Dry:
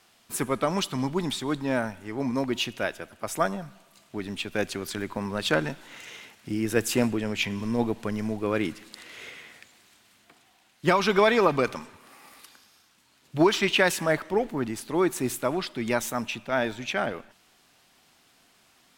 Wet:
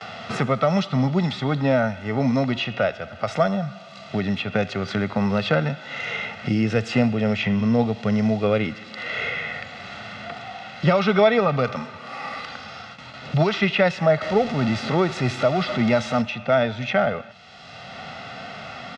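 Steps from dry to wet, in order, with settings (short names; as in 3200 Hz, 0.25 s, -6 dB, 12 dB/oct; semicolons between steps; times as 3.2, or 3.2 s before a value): 14.21–16.22 zero-crossing step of -30.5 dBFS; LPF 5000 Hz 24 dB/oct; high shelf 2600 Hz -2.5 dB; gate with hold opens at -56 dBFS; HPF 85 Hz; comb 1.5 ms, depth 66%; harmonic-percussive split harmonic +9 dB; three-band squash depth 70%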